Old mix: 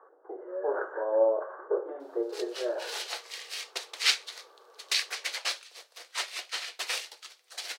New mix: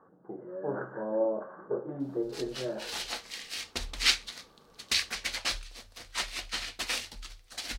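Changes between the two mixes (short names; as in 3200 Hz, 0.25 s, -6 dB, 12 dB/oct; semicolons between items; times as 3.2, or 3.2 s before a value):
speech -5.0 dB; master: remove steep high-pass 380 Hz 48 dB/oct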